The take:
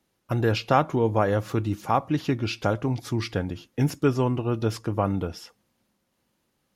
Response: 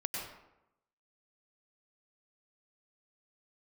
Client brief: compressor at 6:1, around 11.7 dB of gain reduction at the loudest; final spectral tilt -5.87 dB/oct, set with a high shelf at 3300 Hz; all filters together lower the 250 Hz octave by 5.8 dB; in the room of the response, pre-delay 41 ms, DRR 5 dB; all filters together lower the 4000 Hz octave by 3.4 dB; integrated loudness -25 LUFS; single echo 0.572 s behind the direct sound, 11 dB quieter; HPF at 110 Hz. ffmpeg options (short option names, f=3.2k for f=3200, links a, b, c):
-filter_complex "[0:a]highpass=110,equalizer=f=250:t=o:g=-7.5,highshelf=f=3.3k:g=3.5,equalizer=f=4k:t=o:g=-7.5,acompressor=threshold=-29dB:ratio=6,aecho=1:1:572:0.282,asplit=2[a][b];[1:a]atrim=start_sample=2205,adelay=41[c];[b][c]afir=irnorm=-1:irlink=0,volume=-8dB[d];[a][d]amix=inputs=2:normalize=0,volume=9dB"